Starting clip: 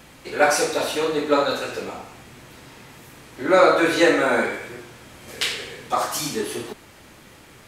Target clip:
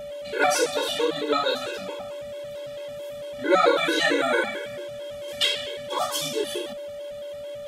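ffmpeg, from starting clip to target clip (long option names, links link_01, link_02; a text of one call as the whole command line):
ffmpeg -i in.wav -filter_complex "[0:a]aeval=exprs='val(0)+0.0447*sin(2*PI*580*n/s)':channel_layout=same,acrossover=split=180[link_01][link_02];[link_01]acompressor=threshold=-49dB:ratio=6[link_03];[link_02]equalizer=frequency=3300:width=5.3:gain=12.5[link_04];[link_03][link_04]amix=inputs=2:normalize=0,afftfilt=real='re*gt(sin(2*PI*4.5*pts/sr)*(1-2*mod(floor(b*sr/1024/280),2)),0)':imag='im*gt(sin(2*PI*4.5*pts/sr)*(1-2*mod(floor(b*sr/1024/280),2)),0)':win_size=1024:overlap=0.75" out.wav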